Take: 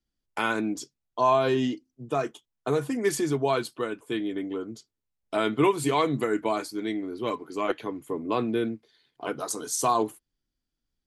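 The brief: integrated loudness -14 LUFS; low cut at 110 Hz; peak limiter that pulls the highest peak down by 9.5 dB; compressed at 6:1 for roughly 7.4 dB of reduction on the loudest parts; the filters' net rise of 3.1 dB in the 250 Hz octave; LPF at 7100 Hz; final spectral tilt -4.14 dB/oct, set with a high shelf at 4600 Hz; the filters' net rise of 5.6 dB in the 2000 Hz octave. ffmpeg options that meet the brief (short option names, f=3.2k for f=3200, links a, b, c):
-af "highpass=110,lowpass=7.1k,equalizer=f=250:t=o:g=4,equalizer=f=2k:t=o:g=6.5,highshelf=f=4.6k:g=6,acompressor=threshold=-23dB:ratio=6,volume=17.5dB,alimiter=limit=-2.5dB:level=0:latency=1"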